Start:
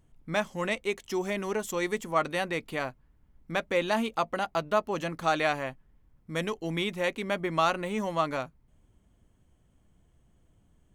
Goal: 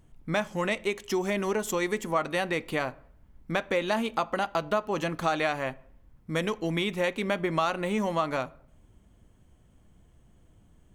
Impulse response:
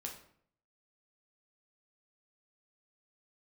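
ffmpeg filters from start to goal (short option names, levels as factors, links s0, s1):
-filter_complex "[0:a]acompressor=threshold=0.0316:ratio=3,asplit=2[s0][s1];[1:a]atrim=start_sample=2205,highshelf=f=5600:g=-11[s2];[s1][s2]afir=irnorm=-1:irlink=0,volume=0.316[s3];[s0][s3]amix=inputs=2:normalize=0,volume=1.58"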